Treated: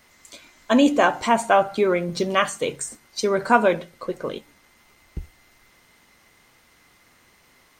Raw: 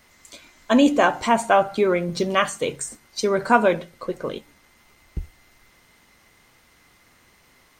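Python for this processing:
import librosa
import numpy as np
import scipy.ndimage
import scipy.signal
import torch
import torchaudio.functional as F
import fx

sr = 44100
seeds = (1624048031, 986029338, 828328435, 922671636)

y = fx.low_shelf(x, sr, hz=120.0, db=-4.0)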